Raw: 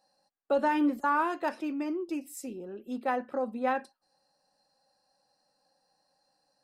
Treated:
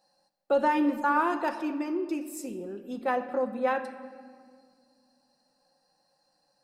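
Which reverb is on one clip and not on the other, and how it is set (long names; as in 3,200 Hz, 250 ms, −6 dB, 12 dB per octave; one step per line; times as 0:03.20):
rectangular room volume 3,200 cubic metres, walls mixed, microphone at 0.86 metres
level +1.5 dB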